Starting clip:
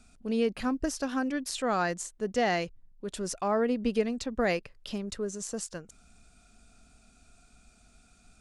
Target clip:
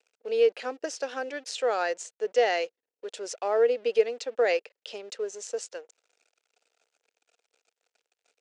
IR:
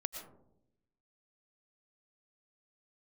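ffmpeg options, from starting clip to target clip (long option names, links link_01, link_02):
-af "aeval=exprs='sgn(val(0))*max(abs(val(0))-0.002,0)':channel_layout=same,highpass=frequency=430:width=0.5412,highpass=frequency=430:width=1.3066,equalizer=frequency=470:width_type=q:width=4:gain=9,equalizer=frequency=1100:width_type=q:width=4:gain=-8,equalizer=frequency=2700:width_type=q:width=4:gain=3,lowpass=frequency=7400:width=0.5412,lowpass=frequency=7400:width=1.3066,volume=1.5dB"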